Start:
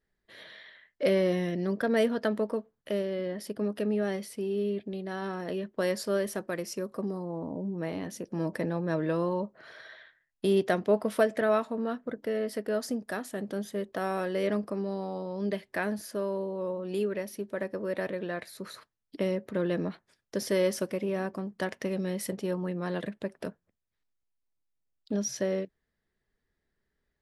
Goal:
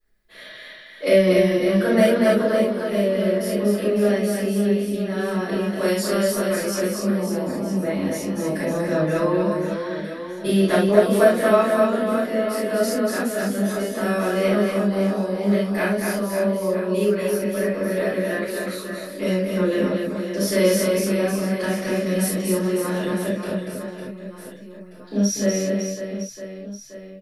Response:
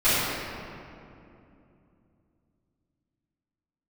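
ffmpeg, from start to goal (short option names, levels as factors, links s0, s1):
-filter_complex "[0:a]highshelf=f=7200:g=10.5,aecho=1:1:240|552|957.6|1485|2170:0.631|0.398|0.251|0.158|0.1[s0];[1:a]atrim=start_sample=2205,atrim=end_sample=3969[s1];[s0][s1]afir=irnorm=-1:irlink=0,volume=0.422"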